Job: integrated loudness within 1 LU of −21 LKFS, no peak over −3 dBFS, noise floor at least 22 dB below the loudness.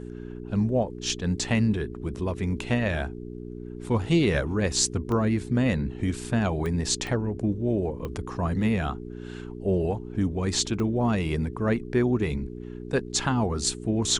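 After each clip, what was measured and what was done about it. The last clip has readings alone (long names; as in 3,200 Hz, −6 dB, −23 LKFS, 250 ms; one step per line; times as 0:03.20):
number of clicks 5; mains hum 60 Hz; hum harmonics up to 420 Hz; level of the hum −35 dBFS; integrated loudness −26.5 LKFS; sample peak −5.0 dBFS; target loudness −21.0 LKFS
→ click removal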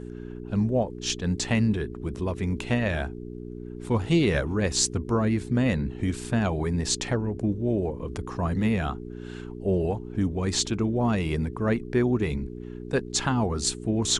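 number of clicks 0; mains hum 60 Hz; hum harmonics up to 420 Hz; level of the hum −35 dBFS
→ hum removal 60 Hz, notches 7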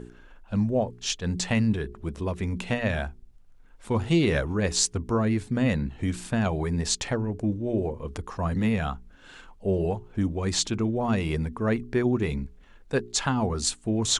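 mains hum none found; integrated loudness −27.0 LKFS; sample peak −5.5 dBFS; target loudness −21.0 LKFS
→ level +6 dB
brickwall limiter −3 dBFS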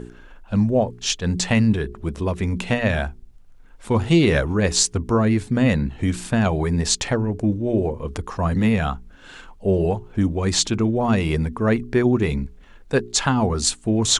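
integrated loudness −21.0 LKFS; sample peak −3.0 dBFS; background noise floor −46 dBFS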